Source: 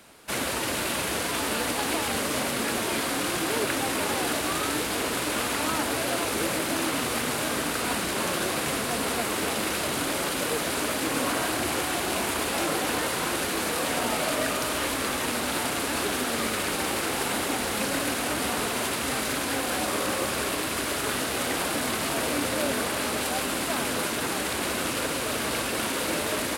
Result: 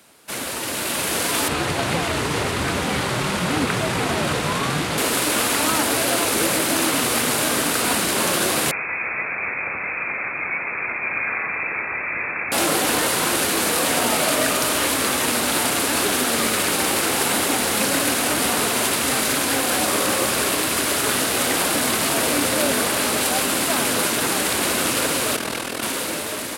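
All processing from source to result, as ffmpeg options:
-filter_complex "[0:a]asettb=1/sr,asplit=3[s0][s1][s2];[s0]atrim=end=1.484[s3];[s1]atrim=start=1.48:end=4.98,asetpts=PTS-STARTPTS,afade=t=in:d=0.004:c=qsin,afade=t=out:st=3.496:d=0.004:c=qsin,aemphasis=mode=reproduction:type=50fm,afreqshift=-150[s4];[s2]atrim=start=4.976[s5];[s3][s4]acrossfade=d=0.004:c1=hsin:c2=qsin[s6];[s6][s5]acrossfade=d=0.004:c1=qsin:c2=hsin,asettb=1/sr,asplit=3[s7][s8][s9];[s7]atrim=end=8.714[s10];[s8]atrim=start=8.71:end=12.52,asetpts=PTS-STARTPTS,afade=t=in:d=0.004:c=qsin,afade=t=out:st=3.806:d=0.004:c=qsin,lowpass=f=2300:t=q:w=0.5098,lowpass=f=2300:t=q:w=0.6013,lowpass=f=2300:t=q:w=0.9,lowpass=f=2300:t=q:w=2.563,afreqshift=-2700,equalizer=f=1200:w=0.41:g=-4.5[s11];[s9]atrim=start=12.516[s12];[s10][s11]acrossfade=d=0.004:c1=hsin:c2=qsin[s13];[s13][s12]acrossfade=d=0.004:c1=qsin:c2=hsin,asettb=1/sr,asplit=3[s14][s15][s16];[s14]atrim=end=25.364[s17];[s15]atrim=start=25.36:end=25.83,asetpts=PTS-STARTPTS,afade=t=in:d=0.004:c=qsin,afade=t=out:st=0.466:d=0.004:c=qsin,highshelf=f=6400:g=-6,asoftclip=type=hard:threshold=0.1,tremolo=f=41:d=0.75[s18];[s16]atrim=start=25.826[s19];[s17][s18]acrossfade=d=0.004:c1=hsin:c2=qsin[s20];[s20][s19]acrossfade=d=0.004:c1=qsin:c2=hsin,highpass=78,dynaudnorm=f=180:g=11:m=2.37,highshelf=f=4600:g=5,volume=0.841"

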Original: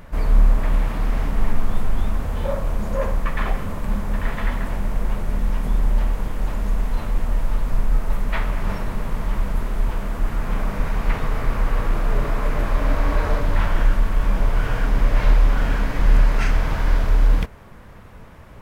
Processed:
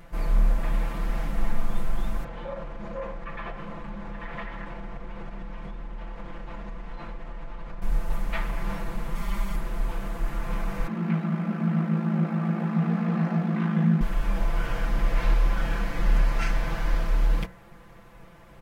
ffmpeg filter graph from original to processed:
-filter_complex "[0:a]asettb=1/sr,asplit=3[s0][s1][s2];[s0]atrim=end=2.244[s3];[s1]atrim=start=2.24:end=7.82,asetpts=PTS-STARTPTS,afade=t=in:d=0.004:c=qsin,afade=t=out:st=5.576:d=0.004:c=qsin,lowpass=3300,acompressor=threshold=0.1:ratio=6:attack=3.2:release=140:knee=1:detection=peak,lowshelf=f=130:g=-6.5[s4];[s2]atrim=start=7.816[s5];[s3][s4]acrossfade=d=0.004:c1=hsin:c2=qsin[s6];[s6][s5]acrossfade=d=0.004:c1=qsin:c2=hsin,asettb=1/sr,asplit=3[s7][s8][s9];[s7]atrim=end=9.154[s10];[s8]atrim=start=9.15:end=9.56,asetpts=PTS-STARTPTS,afade=t=in:d=0.004:c=qsin,afade=t=out:st=0.406:d=0.004:c=qsin,tiltshelf=f=1500:g=-3.5,aecho=1:1:5:0.83,atrim=end_sample=18081[s11];[s9]atrim=start=9.556[s12];[s10][s11]acrossfade=d=0.004:c1=hsin:c2=qsin[s13];[s13][s12]acrossfade=d=0.004:c1=qsin:c2=hsin,asettb=1/sr,asplit=3[s14][s15][s16];[s14]atrim=end=10.874[s17];[s15]atrim=start=10.87:end=14.01,asetpts=PTS-STARTPTS,afade=t=in:d=0.004:c=qsin,afade=t=out:st=3.136:d=0.004:c=qsin,lowpass=f=2000:p=1,aeval=exprs='val(0)*sin(2*PI*27*n/s)':c=same,afreqshift=160[s18];[s16]atrim=start=14.006[s19];[s17][s18]acrossfade=d=0.004:c1=hsin:c2=qsin[s20];[s20][s19]acrossfade=d=0.004:c1=qsin:c2=hsin,lowshelf=f=140:g=-3.5,aecho=1:1:5.9:0.91,bandreject=f=60.89:t=h:w=4,bandreject=f=121.78:t=h:w=4,bandreject=f=182.67:t=h:w=4,bandreject=f=243.56:t=h:w=4,bandreject=f=304.45:t=h:w=4,bandreject=f=365.34:t=h:w=4,bandreject=f=426.23:t=h:w=4,bandreject=f=487.12:t=h:w=4,bandreject=f=548.01:t=h:w=4,bandreject=f=608.9:t=h:w=4,bandreject=f=669.79:t=h:w=4,bandreject=f=730.68:t=h:w=4,bandreject=f=791.57:t=h:w=4,bandreject=f=852.46:t=h:w=4,bandreject=f=913.35:t=h:w=4,bandreject=f=974.24:t=h:w=4,bandreject=f=1035.13:t=h:w=4,bandreject=f=1096.02:t=h:w=4,bandreject=f=1156.91:t=h:w=4,bandreject=f=1217.8:t=h:w=4,bandreject=f=1278.69:t=h:w=4,bandreject=f=1339.58:t=h:w=4,bandreject=f=1400.47:t=h:w=4,bandreject=f=1461.36:t=h:w=4,bandreject=f=1522.25:t=h:w=4,bandreject=f=1583.14:t=h:w=4,bandreject=f=1644.03:t=h:w=4,bandreject=f=1704.92:t=h:w=4,bandreject=f=1765.81:t=h:w=4,bandreject=f=1826.7:t=h:w=4,bandreject=f=1887.59:t=h:w=4,bandreject=f=1948.48:t=h:w=4,bandreject=f=2009.37:t=h:w=4,volume=0.447"

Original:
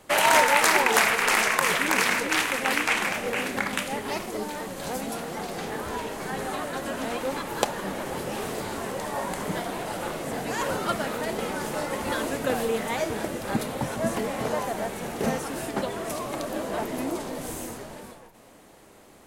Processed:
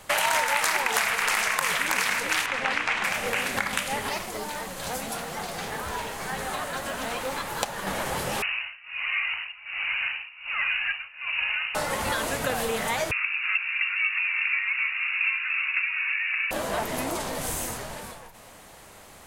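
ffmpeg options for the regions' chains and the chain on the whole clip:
-filter_complex "[0:a]asettb=1/sr,asplit=3[s0][s1][s2];[s0]atrim=end=2.464[s3];[s1]atrim=start=2.46:end=3.04,asetpts=PTS-STARTPTS,afade=t=in:d=0.004:c=qsin,afade=t=out:st=0.576:d=0.004:c=qsin,lowpass=6600,highshelf=f=4600:g=-9[s4];[s2]atrim=start=3.036[s5];[s3][s4]acrossfade=d=0.004:c1=hsin:c2=qsin[s6];[s6][s5]acrossfade=d=0.004:c1=qsin:c2=hsin,asettb=1/sr,asplit=3[s7][s8][s9];[s7]atrim=end=4.094[s10];[s8]atrim=start=4.09:end=7.87,asetpts=PTS-STARTPTS,afade=t=in:d=0.004:c=qsin,afade=t=out:st=3.776:d=0.004:c=qsin,acrusher=bits=7:mode=log:mix=0:aa=0.000001,flanger=delay=3.8:depth=8.5:regen=-61:speed=1.7:shape=sinusoidal[s11];[s9]atrim=start=7.866[s12];[s10][s11]acrossfade=d=0.004:c1=hsin:c2=qsin[s13];[s13][s12]acrossfade=d=0.004:c1=qsin:c2=hsin,asettb=1/sr,asplit=3[s14][s15][s16];[s14]atrim=end=8.424[s17];[s15]atrim=start=8.42:end=11.75,asetpts=PTS-STARTPTS,afade=t=in:d=0.004:c=qsin,afade=t=out:st=3.326:d=0.004:c=qsin,tremolo=f=1.3:d=0.94,lowpass=f=2600:t=q:w=0.5098,lowpass=f=2600:t=q:w=0.6013,lowpass=f=2600:t=q:w=0.9,lowpass=f=2600:t=q:w=2.563,afreqshift=-3000,equalizer=f=310:t=o:w=2.2:g=-8.5[s18];[s16]atrim=start=11.746[s19];[s17][s18]acrossfade=d=0.004:c1=hsin:c2=qsin[s20];[s20][s19]acrossfade=d=0.004:c1=qsin:c2=hsin,asettb=1/sr,asplit=3[s21][s22][s23];[s21]atrim=end=13.114[s24];[s22]atrim=start=13.11:end=16.51,asetpts=PTS-STARTPTS,afade=t=in:d=0.004:c=qsin,afade=t=out:st=3.396:d=0.004:c=qsin,aecho=1:1:317:0.299,atrim=end_sample=149940,lowpass=f=2500:t=q:w=0.5098,lowpass=f=2500:t=q:w=0.6013,lowpass=f=2500:t=q:w=0.9,lowpass=f=2500:t=q:w=2.563,afreqshift=-2900,highpass=f=1200:w=0.5412,highpass=f=1200:w=1.3066[s25];[s23]atrim=start=16.506[s26];[s24][s25]acrossfade=d=0.004:c1=hsin:c2=qsin[s27];[s27][s26]acrossfade=d=0.004:c1=qsin:c2=hsin,equalizer=f=310:t=o:w=1.7:g=-11,acompressor=threshold=0.0251:ratio=3,volume=2.37"

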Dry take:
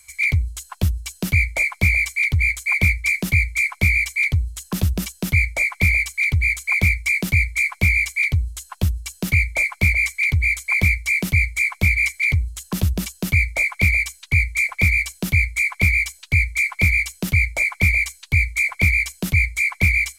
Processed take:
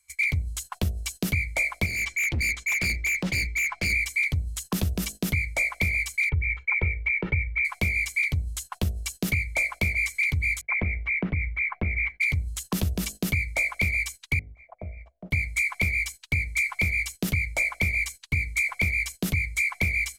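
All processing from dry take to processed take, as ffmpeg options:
-filter_complex "[0:a]asettb=1/sr,asplit=3[s0][s1][s2];[s0]atrim=end=1.864[s3];[s1]atrim=start=1.86:end=3.93,asetpts=PTS-STARTPTS,afade=t=in:d=0.004:c=qsin,afade=t=out:st=2.066:d=0.004:c=qsin,lowpass=3800,aecho=1:1:6:0.37,atrim=end_sample=91287,asoftclip=type=hard:threshold=0.0708[s4];[s2]atrim=start=3.926[s5];[s3][s4]acrossfade=d=0.004:c1=hsin:c2=qsin[s6];[s6][s5]acrossfade=d=0.004:c1=qsin:c2=hsin,asettb=1/sr,asplit=3[s7][s8][s9];[s7]atrim=end=6.294[s10];[s8]atrim=start=6.29:end=7.65,asetpts=PTS-STARTPTS,afade=t=in:d=0.004:c=qsin,afade=t=out:st=1.356:d=0.004:c=qsin,lowpass=f=2200:w=0.5412,lowpass=f=2200:w=1.3066,aecho=1:1:2.2:0.65,atrim=end_sample=59976[s11];[s9]atrim=start=7.646[s12];[s10][s11]acrossfade=d=0.004:c1=hsin:c2=qsin[s13];[s13][s12]acrossfade=d=0.004:c1=qsin:c2=hsin,asettb=1/sr,asplit=3[s14][s15][s16];[s14]atrim=end=10.614[s17];[s15]atrim=start=10.61:end=12.21,asetpts=PTS-STARTPTS,afade=t=in:d=0.004:c=qsin,afade=t=out:st=1.596:d=0.004:c=qsin,lowpass=f=2000:w=0.5412,lowpass=f=2000:w=1.3066,agate=range=0.0224:threshold=0.00447:ratio=3:release=100:detection=peak,acompressor=threshold=0.126:ratio=6:attack=3.2:release=140:knee=1:detection=peak[s18];[s16]atrim=start=12.206[s19];[s17][s18]acrossfade=d=0.004:c1=hsin:c2=qsin[s20];[s20][s19]acrossfade=d=0.004:c1=qsin:c2=hsin,asettb=1/sr,asplit=3[s21][s22][s23];[s21]atrim=end=14.394[s24];[s22]atrim=start=14.39:end=15.31,asetpts=PTS-STARTPTS,afade=t=in:d=0.004:c=qsin,afade=t=out:st=0.916:d=0.004:c=qsin,lowpass=f=650:t=q:w=6.6,acompressor=threshold=0.0158:ratio=4:attack=3.2:release=140:knee=1:detection=peak[s25];[s23]atrim=start=15.306[s26];[s24][s25]acrossfade=d=0.004:c1=hsin:c2=qsin[s27];[s27][s26]acrossfade=d=0.004:c1=qsin:c2=hsin,acompressor=threshold=0.0794:ratio=6,bandreject=f=52.03:t=h:w=4,bandreject=f=104.06:t=h:w=4,bandreject=f=156.09:t=h:w=4,bandreject=f=208.12:t=h:w=4,bandreject=f=260.15:t=h:w=4,bandreject=f=312.18:t=h:w=4,bandreject=f=364.21:t=h:w=4,bandreject=f=416.24:t=h:w=4,bandreject=f=468.27:t=h:w=4,bandreject=f=520.3:t=h:w=4,bandreject=f=572.33:t=h:w=4,bandreject=f=624.36:t=h:w=4,bandreject=f=676.39:t=h:w=4,bandreject=f=728.42:t=h:w=4,agate=range=0.126:threshold=0.0126:ratio=16:detection=peak"

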